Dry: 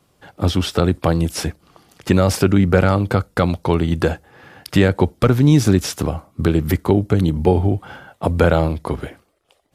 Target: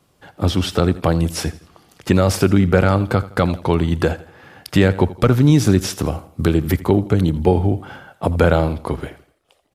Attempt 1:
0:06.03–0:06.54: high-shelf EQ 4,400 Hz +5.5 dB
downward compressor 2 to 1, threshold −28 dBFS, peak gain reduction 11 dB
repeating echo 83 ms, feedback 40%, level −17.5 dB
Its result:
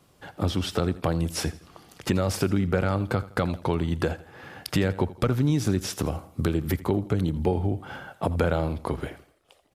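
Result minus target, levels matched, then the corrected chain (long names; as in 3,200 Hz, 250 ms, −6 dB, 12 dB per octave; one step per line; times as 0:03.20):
downward compressor: peak gain reduction +11 dB
0:06.03–0:06.54: high-shelf EQ 4,400 Hz +5.5 dB
repeating echo 83 ms, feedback 40%, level −17.5 dB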